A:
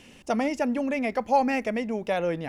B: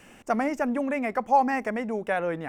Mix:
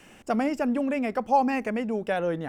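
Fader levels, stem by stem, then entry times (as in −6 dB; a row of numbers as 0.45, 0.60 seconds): −8.0, −1.0 decibels; 0.00, 0.00 seconds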